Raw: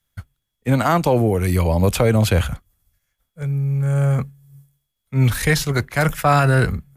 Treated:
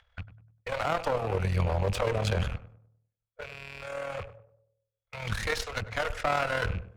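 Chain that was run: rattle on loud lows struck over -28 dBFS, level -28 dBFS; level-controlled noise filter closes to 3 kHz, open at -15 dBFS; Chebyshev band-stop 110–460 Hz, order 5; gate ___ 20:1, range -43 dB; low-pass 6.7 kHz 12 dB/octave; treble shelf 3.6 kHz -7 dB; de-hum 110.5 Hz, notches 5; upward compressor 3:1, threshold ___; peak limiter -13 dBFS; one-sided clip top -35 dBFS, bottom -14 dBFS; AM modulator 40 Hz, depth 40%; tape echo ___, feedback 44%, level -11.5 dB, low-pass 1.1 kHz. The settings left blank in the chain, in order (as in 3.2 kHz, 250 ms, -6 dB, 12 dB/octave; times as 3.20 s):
-47 dBFS, -32 dBFS, 98 ms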